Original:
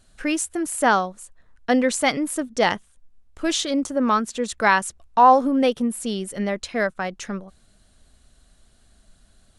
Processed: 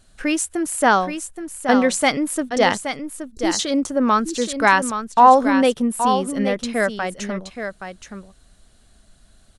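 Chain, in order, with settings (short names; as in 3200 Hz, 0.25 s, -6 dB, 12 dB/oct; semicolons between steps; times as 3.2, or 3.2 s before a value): spectral delete 2.82–3.59, 470–3900 Hz; echo 0.823 s -8.5 dB; gain +2.5 dB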